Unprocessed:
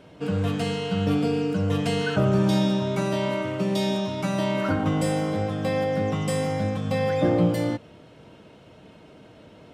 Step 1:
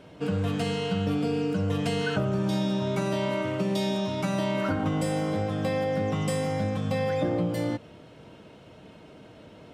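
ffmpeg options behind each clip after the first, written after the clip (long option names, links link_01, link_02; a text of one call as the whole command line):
ffmpeg -i in.wav -af "acompressor=threshold=-23dB:ratio=6" out.wav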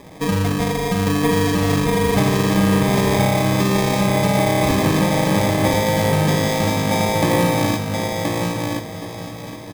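ffmpeg -i in.wav -filter_complex "[0:a]asplit=2[link_01][link_02];[link_02]adelay=766,lowpass=frequency=2000:poles=1,volume=-11.5dB,asplit=2[link_03][link_04];[link_04]adelay=766,lowpass=frequency=2000:poles=1,volume=0.49,asplit=2[link_05][link_06];[link_06]adelay=766,lowpass=frequency=2000:poles=1,volume=0.49,asplit=2[link_07][link_08];[link_08]adelay=766,lowpass=frequency=2000:poles=1,volume=0.49,asplit=2[link_09][link_10];[link_10]adelay=766,lowpass=frequency=2000:poles=1,volume=0.49[link_11];[link_03][link_05][link_07][link_09][link_11]amix=inputs=5:normalize=0[link_12];[link_01][link_12]amix=inputs=2:normalize=0,acrusher=samples=31:mix=1:aa=0.000001,asplit=2[link_13][link_14];[link_14]aecho=0:1:1025|2050|3075:0.668|0.107|0.0171[link_15];[link_13][link_15]amix=inputs=2:normalize=0,volume=8dB" out.wav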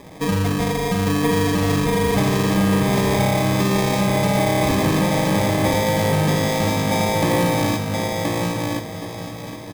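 ffmpeg -i in.wav -af "asoftclip=type=tanh:threshold=-10dB" out.wav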